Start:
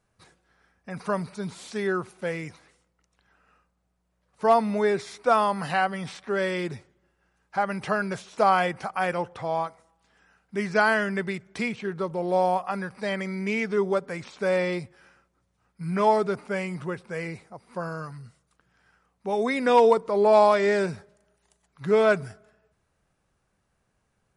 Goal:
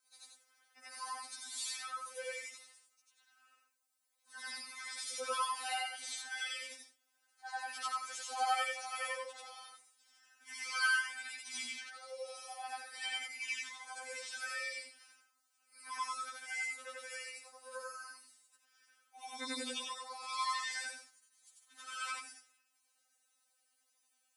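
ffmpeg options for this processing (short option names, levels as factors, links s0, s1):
-filter_complex "[0:a]afftfilt=real='re':imag='-im':win_size=8192:overlap=0.75,asplit=2[s0][s1];[s1]acompressor=threshold=0.0112:ratio=6,volume=0.891[s2];[s0][s2]amix=inputs=2:normalize=0,aderivative,afftfilt=real='re*3.46*eq(mod(b,12),0)':imag='im*3.46*eq(mod(b,12),0)':win_size=2048:overlap=0.75,volume=2.51"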